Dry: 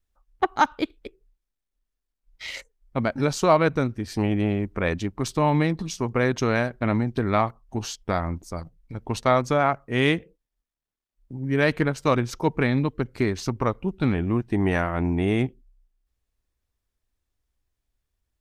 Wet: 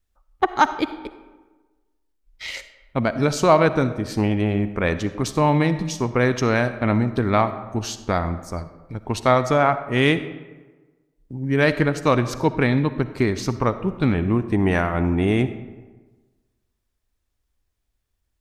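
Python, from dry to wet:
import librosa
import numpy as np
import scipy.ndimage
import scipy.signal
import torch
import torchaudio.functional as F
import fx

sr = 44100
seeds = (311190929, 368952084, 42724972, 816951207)

y = fx.rev_freeverb(x, sr, rt60_s=1.3, hf_ratio=0.55, predelay_ms=20, drr_db=12.0)
y = F.gain(torch.from_numpy(y), 3.0).numpy()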